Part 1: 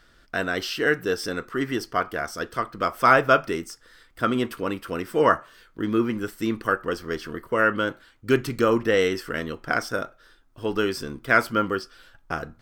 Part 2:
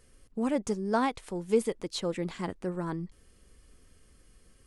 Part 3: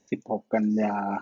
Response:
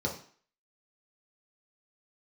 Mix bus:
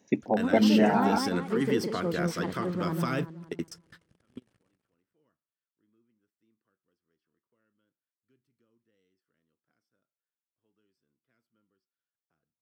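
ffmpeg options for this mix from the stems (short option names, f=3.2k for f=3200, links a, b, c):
-filter_complex "[0:a]acrossover=split=330|3000[a][b][c];[b]acompressor=threshold=-34dB:ratio=4[d];[a][d][c]amix=inputs=3:normalize=0,volume=2dB[e];[1:a]acrusher=bits=7:mix=0:aa=0.5,lowpass=9.3k,bass=f=250:g=5,treble=f=4k:g=-3,volume=-1.5dB,asplit=3[f][g][h];[g]volume=-5dB[i];[2:a]volume=2dB[j];[h]apad=whole_len=556315[k];[e][k]sidechaingate=range=-49dB:threshold=-57dB:ratio=16:detection=peak[l];[l][f]amix=inputs=2:normalize=0,alimiter=limit=-19.5dB:level=0:latency=1:release=40,volume=0dB[m];[i]aecho=0:1:188|376|564|752|940|1128:1|0.4|0.16|0.064|0.0256|0.0102[n];[j][m][n]amix=inputs=3:normalize=0,highpass=130,bass=f=250:g=3,treble=f=4k:g=-5"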